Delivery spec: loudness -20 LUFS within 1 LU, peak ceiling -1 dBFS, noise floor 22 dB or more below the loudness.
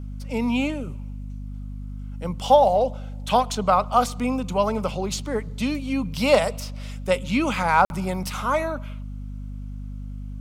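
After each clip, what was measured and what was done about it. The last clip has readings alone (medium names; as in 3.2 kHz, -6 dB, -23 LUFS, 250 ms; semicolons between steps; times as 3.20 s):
dropouts 1; longest dropout 51 ms; hum 50 Hz; highest harmonic 250 Hz; hum level -31 dBFS; loudness -23.0 LUFS; peak level -4.5 dBFS; loudness target -20.0 LUFS
-> interpolate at 7.85 s, 51 ms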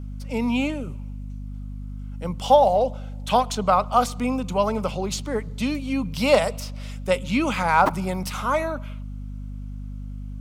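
dropouts 0; hum 50 Hz; highest harmonic 250 Hz; hum level -31 dBFS
-> de-hum 50 Hz, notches 5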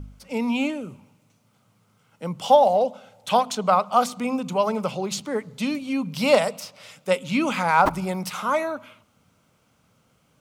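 hum not found; loudness -23.0 LUFS; peak level -4.5 dBFS; loudness target -20.0 LUFS
-> trim +3 dB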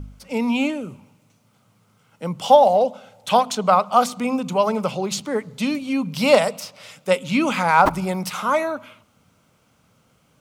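loudness -20.0 LUFS; peak level -1.5 dBFS; noise floor -62 dBFS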